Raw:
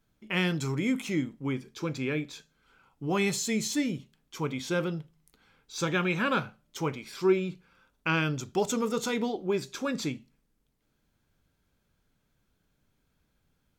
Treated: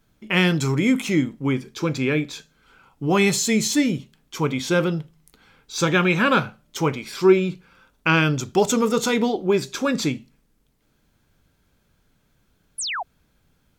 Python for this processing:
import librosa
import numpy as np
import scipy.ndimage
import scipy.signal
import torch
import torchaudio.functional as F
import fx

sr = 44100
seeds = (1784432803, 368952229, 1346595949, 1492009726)

y = fx.spec_paint(x, sr, seeds[0], shape='fall', start_s=12.78, length_s=0.25, low_hz=640.0, high_hz=11000.0, level_db=-36.0)
y = F.gain(torch.from_numpy(y), 9.0).numpy()